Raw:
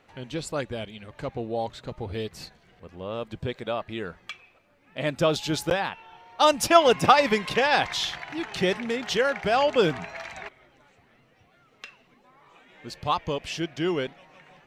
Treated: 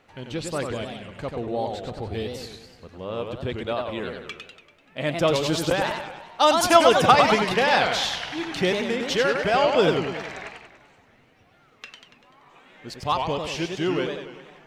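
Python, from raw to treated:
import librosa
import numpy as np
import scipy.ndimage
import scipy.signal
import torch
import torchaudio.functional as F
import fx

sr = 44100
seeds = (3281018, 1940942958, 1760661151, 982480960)

y = fx.echo_warbled(x, sr, ms=97, feedback_pct=55, rate_hz=2.8, cents=213, wet_db=-5.0)
y = y * 10.0 ** (1.0 / 20.0)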